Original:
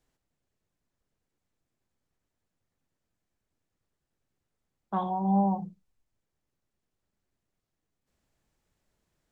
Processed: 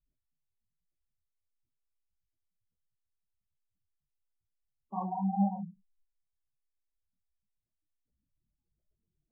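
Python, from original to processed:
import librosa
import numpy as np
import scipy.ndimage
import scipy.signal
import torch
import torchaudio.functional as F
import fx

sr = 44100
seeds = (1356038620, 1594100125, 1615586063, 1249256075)

y = fx.spec_gate(x, sr, threshold_db=-10, keep='strong')
y = scipy.signal.lfilter(np.full(16, 1.0 / 16), 1.0, y)
y = fx.detune_double(y, sr, cents=47)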